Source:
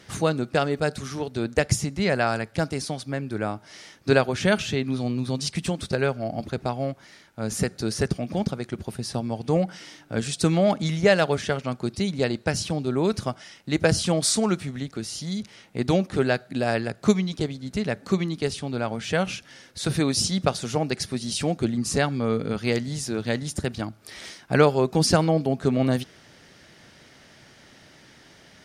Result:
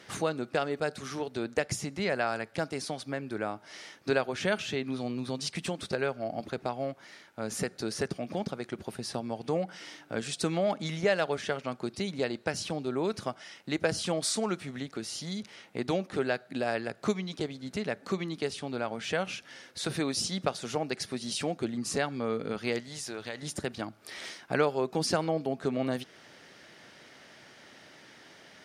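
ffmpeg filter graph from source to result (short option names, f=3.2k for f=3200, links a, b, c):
-filter_complex "[0:a]asettb=1/sr,asplit=3[a][b][c];[a]atrim=end=22.804[d];[b]atrim=start=22.8:end=23.43,asetpts=PTS-STARTPTS,afade=t=in:d=0.004:c=qsin,afade=t=out:st=0.626:d=0.004:c=qsin,equalizer=f=210:t=o:w=2.2:g=-9,acompressor=threshold=-30dB:ratio=4:attack=3.2:release=140:knee=1:detection=peak[e];[c]atrim=start=23.426[f];[d][e]acrossfade=d=0.004:c1=hsin:c2=qsin[g];[g][f]acrossfade=d=0.004:c1=qsin:c2=hsin,highpass=f=190:p=1,bass=f=250:g=-4,treble=f=4k:g=-4,acompressor=threshold=-35dB:ratio=1.5"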